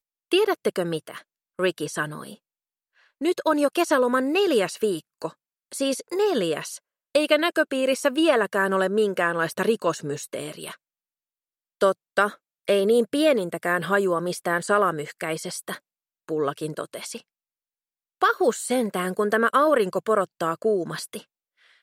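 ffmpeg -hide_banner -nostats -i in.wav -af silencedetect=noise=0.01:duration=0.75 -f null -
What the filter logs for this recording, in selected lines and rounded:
silence_start: 2.35
silence_end: 3.21 | silence_duration: 0.87
silence_start: 10.75
silence_end: 11.81 | silence_duration: 1.07
silence_start: 17.20
silence_end: 18.22 | silence_duration: 1.01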